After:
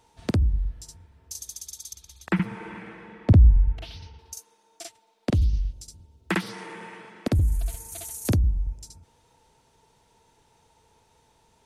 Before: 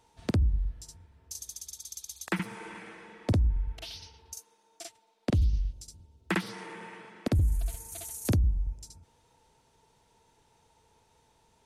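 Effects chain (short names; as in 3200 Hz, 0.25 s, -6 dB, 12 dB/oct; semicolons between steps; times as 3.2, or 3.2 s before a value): 1.93–4.19 tone controls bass +8 dB, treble -13 dB; gain +3.5 dB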